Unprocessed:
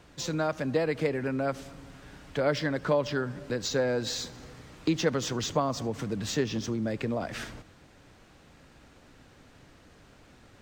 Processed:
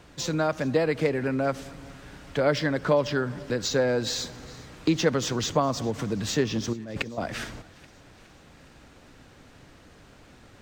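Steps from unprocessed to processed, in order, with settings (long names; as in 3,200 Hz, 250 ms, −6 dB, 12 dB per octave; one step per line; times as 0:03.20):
0:06.73–0:07.18: compressor whose output falls as the input rises −36 dBFS, ratio −0.5
on a send: feedback echo with a high-pass in the loop 415 ms, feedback 64%, high-pass 1,100 Hz, level −21.5 dB
on the sum: level +3.5 dB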